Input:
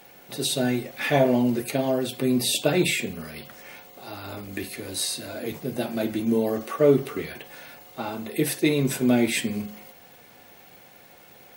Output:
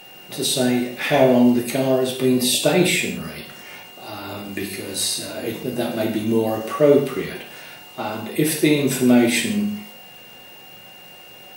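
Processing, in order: non-linear reverb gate 0.2 s falling, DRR 1.5 dB; whine 2800 Hz -46 dBFS; gain +3 dB

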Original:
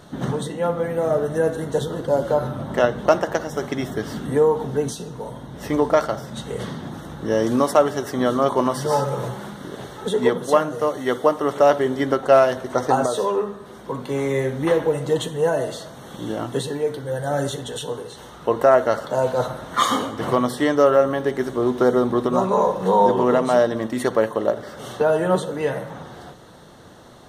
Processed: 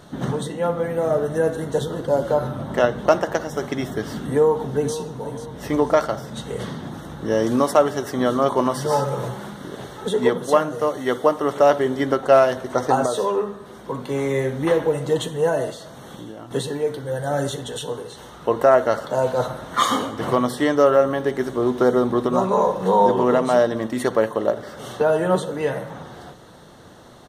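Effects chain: 4.26–4.96 echo throw 0.49 s, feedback 40%, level -12.5 dB; 15.7–16.51 compressor 5:1, threshold -34 dBFS, peak gain reduction 11.5 dB

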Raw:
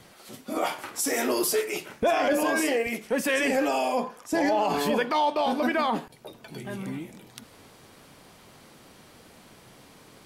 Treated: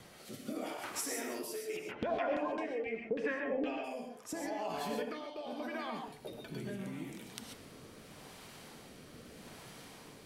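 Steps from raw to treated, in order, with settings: compressor 6:1, threshold -37 dBFS, peak gain reduction 16.5 dB; rotary speaker horn 0.8 Hz; 1.76–3.83 LFO low-pass saw down 8.5 Hz -> 1.5 Hz 340–3500 Hz; non-linear reverb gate 0.16 s rising, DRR 2.5 dB

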